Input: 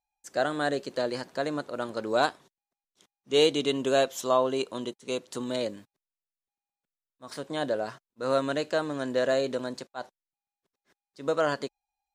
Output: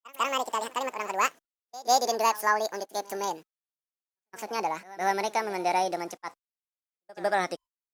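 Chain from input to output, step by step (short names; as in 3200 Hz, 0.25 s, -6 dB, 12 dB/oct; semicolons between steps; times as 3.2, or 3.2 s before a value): speed glide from 184% -> 122%; pre-echo 0.16 s -20 dB; gate -46 dBFS, range -38 dB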